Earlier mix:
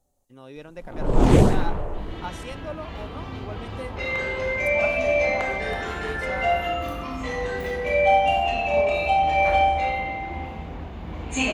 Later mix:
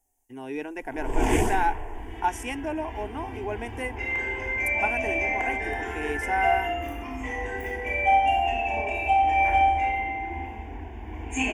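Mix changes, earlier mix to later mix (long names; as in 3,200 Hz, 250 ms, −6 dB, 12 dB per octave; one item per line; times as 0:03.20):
speech +11.0 dB
first sound: add tilt shelving filter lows −6 dB, about 940 Hz
master: add phaser with its sweep stopped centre 830 Hz, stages 8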